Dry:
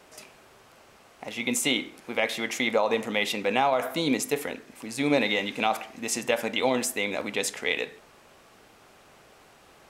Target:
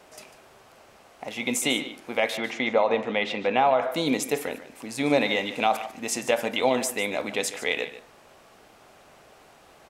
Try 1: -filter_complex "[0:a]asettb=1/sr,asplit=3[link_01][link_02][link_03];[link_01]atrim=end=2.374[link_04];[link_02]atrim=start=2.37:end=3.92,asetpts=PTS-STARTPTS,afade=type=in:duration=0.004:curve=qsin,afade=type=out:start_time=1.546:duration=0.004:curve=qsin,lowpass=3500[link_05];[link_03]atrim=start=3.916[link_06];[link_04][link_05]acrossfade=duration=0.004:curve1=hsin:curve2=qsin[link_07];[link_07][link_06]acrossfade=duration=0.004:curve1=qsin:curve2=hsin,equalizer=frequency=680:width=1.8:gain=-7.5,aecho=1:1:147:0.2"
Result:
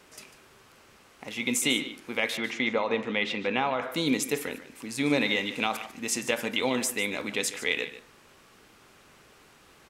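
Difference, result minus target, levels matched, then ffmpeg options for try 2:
500 Hz band −3.5 dB
-filter_complex "[0:a]asettb=1/sr,asplit=3[link_01][link_02][link_03];[link_01]atrim=end=2.374[link_04];[link_02]atrim=start=2.37:end=3.92,asetpts=PTS-STARTPTS,afade=type=in:duration=0.004:curve=qsin,afade=type=out:start_time=1.546:duration=0.004:curve=qsin,lowpass=3500[link_05];[link_03]atrim=start=3.916[link_06];[link_04][link_05]acrossfade=duration=0.004:curve1=hsin:curve2=qsin[link_07];[link_07][link_06]acrossfade=duration=0.004:curve1=qsin:curve2=hsin,equalizer=frequency=680:width=1.8:gain=4,aecho=1:1:147:0.2"

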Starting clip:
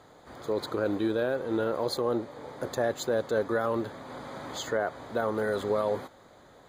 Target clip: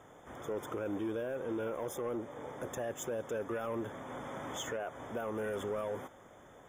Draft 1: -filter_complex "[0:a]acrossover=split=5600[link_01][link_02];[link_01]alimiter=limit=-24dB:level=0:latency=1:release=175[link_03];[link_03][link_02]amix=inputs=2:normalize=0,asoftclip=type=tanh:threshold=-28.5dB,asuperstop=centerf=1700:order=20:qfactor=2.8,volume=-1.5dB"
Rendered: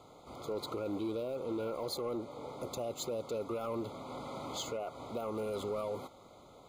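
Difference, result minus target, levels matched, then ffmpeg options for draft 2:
2,000 Hz band −9.5 dB
-filter_complex "[0:a]acrossover=split=5600[link_01][link_02];[link_01]alimiter=limit=-24dB:level=0:latency=1:release=175[link_03];[link_03][link_02]amix=inputs=2:normalize=0,asoftclip=type=tanh:threshold=-28.5dB,asuperstop=centerf=4300:order=20:qfactor=2.8,volume=-1.5dB"

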